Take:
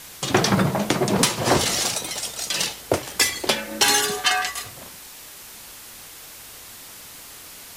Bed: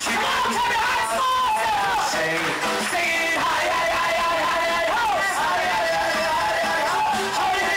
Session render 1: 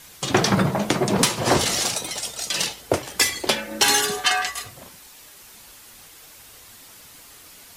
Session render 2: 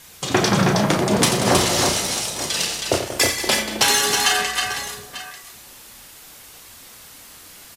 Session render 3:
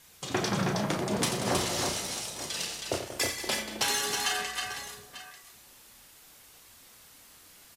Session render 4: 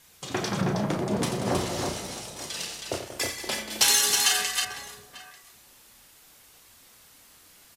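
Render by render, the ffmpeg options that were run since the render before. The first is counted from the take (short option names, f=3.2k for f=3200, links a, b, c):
-af "afftdn=nr=6:nf=-42"
-filter_complex "[0:a]asplit=2[a][b];[b]adelay=33,volume=-8dB[c];[a][c]amix=inputs=2:normalize=0,aecho=1:1:88|185|232|318|892:0.376|0.266|0.141|0.631|0.2"
-af "volume=-11.5dB"
-filter_complex "[0:a]asettb=1/sr,asplit=3[a][b][c];[a]atrim=end=0.614[d];[b]atrim=start=0.61:end=2.37,asetpts=PTS-STARTPTS,afade=t=in:d=0.004:c=qsin,afade=t=out:st=1.756:d=0.004:c=qsin,tiltshelf=f=1.1k:g=4[e];[c]atrim=start=2.366[f];[d][e]acrossfade=d=0.004:c1=hsin:c2=qsin[g];[g][f]acrossfade=d=0.004:c1=qsin:c2=hsin,asettb=1/sr,asplit=3[h][i][j];[h]atrim=end=3.704[k];[i]atrim=start=3.7:end=4.65,asetpts=PTS-STARTPTS,afade=t=in:d=0.004:c=qsin,afade=t=out:st=0.946:d=0.004:c=qsin,highshelf=f=2.6k:g=11.5[l];[j]atrim=start=4.646[m];[k][l]acrossfade=d=0.004:c1=hsin:c2=qsin[n];[n][m]acrossfade=d=0.004:c1=qsin:c2=hsin"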